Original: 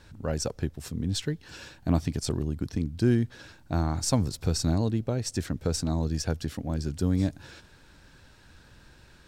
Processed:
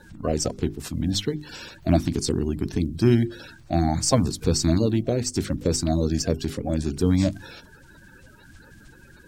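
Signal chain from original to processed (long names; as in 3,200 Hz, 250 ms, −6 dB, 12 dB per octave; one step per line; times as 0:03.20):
spectral magnitudes quantised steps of 30 dB
mains-hum notches 50/100/150/200/250/300/350/400 Hz
level +6 dB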